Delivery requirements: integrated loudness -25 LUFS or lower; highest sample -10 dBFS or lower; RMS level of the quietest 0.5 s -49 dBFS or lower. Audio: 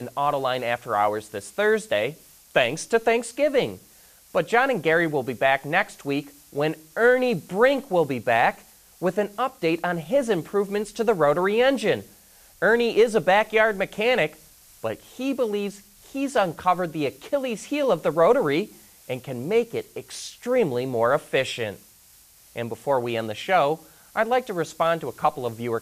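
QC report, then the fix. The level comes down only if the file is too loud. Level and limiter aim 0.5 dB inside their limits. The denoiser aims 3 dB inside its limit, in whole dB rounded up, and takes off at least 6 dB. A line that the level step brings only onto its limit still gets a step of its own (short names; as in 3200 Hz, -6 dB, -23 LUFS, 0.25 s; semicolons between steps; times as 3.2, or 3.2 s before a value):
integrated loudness -23.5 LUFS: fail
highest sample -6.0 dBFS: fail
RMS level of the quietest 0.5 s -53 dBFS: OK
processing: gain -2 dB; limiter -10.5 dBFS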